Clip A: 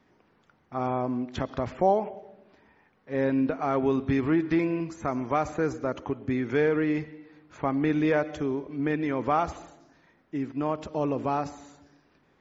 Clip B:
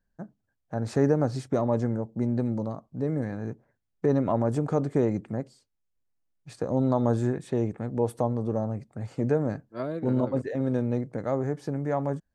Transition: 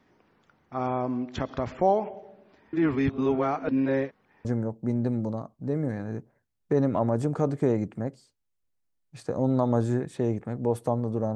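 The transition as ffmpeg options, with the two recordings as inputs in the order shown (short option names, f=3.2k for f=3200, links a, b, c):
-filter_complex "[0:a]apad=whole_dur=11.35,atrim=end=11.35,asplit=2[a][b];[a]atrim=end=2.732[c];[b]atrim=start=2.728:end=4.452,asetpts=PTS-STARTPTS,areverse[d];[1:a]atrim=start=1.778:end=8.68[e];[c][d]acrossfade=d=0.004:c1=hsin:c2=hsin[f];[f][e]acrossfade=d=0.004:c1=hsin:c2=hsin"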